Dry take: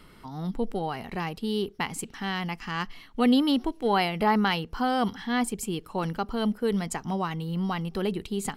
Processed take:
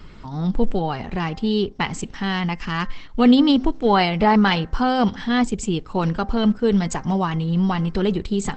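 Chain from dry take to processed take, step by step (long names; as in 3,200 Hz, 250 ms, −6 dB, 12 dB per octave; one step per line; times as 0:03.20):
low-shelf EQ 120 Hz +10 dB
hum removal 262.2 Hz, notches 8
level +6.5 dB
Opus 12 kbit/s 48,000 Hz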